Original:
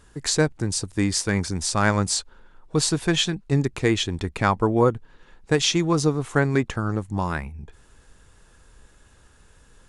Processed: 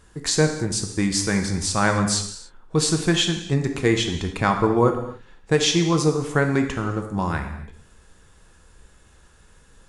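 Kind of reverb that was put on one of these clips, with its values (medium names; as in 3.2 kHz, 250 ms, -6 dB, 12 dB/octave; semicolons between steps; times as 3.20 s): gated-style reverb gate 320 ms falling, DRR 4.5 dB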